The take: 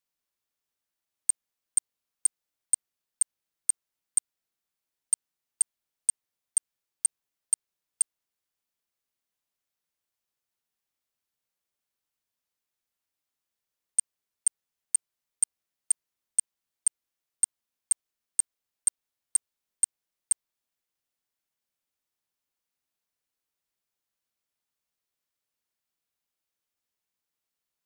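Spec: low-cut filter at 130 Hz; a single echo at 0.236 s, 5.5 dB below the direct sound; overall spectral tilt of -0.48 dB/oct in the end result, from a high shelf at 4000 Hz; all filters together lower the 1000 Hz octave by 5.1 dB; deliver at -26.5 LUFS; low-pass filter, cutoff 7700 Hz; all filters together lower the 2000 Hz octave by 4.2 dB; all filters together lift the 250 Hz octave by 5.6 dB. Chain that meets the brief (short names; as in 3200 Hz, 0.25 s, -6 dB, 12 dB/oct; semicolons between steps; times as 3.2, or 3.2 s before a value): HPF 130 Hz; LPF 7700 Hz; bell 250 Hz +8 dB; bell 1000 Hz -6 dB; bell 2000 Hz -3 dB; high shelf 4000 Hz -3 dB; echo 0.236 s -5.5 dB; gain +9.5 dB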